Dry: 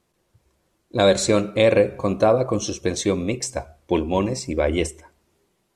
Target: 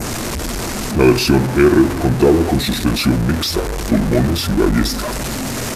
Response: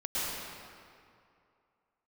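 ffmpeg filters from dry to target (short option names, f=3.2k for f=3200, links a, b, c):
-af "aeval=exprs='val(0)+0.5*0.112*sgn(val(0))':c=same,adynamicequalizer=threshold=0.0126:dfrequency=5100:dqfactor=1.6:tfrequency=5100:tqfactor=1.6:attack=5:release=100:ratio=0.375:range=2:mode=cutabove:tftype=bell,asetrate=28595,aresample=44100,atempo=1.54221,volume=3.5dB"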